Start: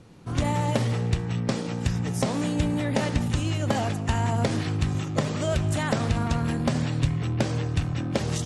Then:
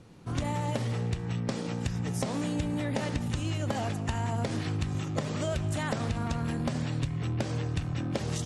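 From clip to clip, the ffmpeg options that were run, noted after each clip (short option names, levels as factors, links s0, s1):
-af "acompressor=threshold=0.0631:ratio=6,volume=0.75"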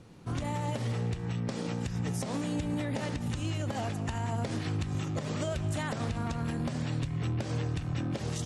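-af "alimiter=limit=0.0668:level=0:latency=1:release=117"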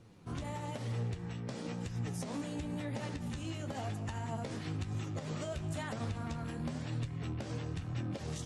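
-af "flanger=delay=8.3:depth=7.3:regen=45:speed=1:shape=triangular,volume=0.794"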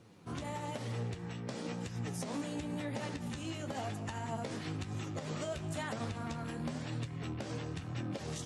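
-af "highpass=f=160:p=1,volume=1.26"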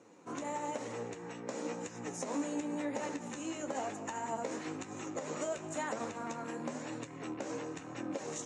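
-af "highpass=290,equalizer=f=290:t=q:w=4:g=6,equalizer=f=510:t=q:w=4:g=5,equalizer=f=960:t=q:w=4:g=4,equalizer=f=3300:t=q:w=4:g=-8,equalizer=f=4700:t=q:w=4:g=-8,equalizer=f=6900:t=q:w=4:g=9,lowpass=f=8100:w=0.5412,lowpass=f=8100:w=1.3066,volume=1.12"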